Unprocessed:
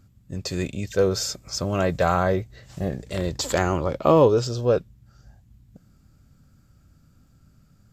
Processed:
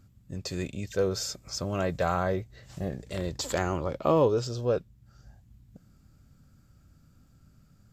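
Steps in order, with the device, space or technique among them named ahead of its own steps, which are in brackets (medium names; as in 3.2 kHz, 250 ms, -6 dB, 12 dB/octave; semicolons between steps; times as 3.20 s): parallel compression (in parallel at -3 dB: compression, threshold -39 dBFS, peak gain reduction 24.5 dB); on the sum: trim -7 dB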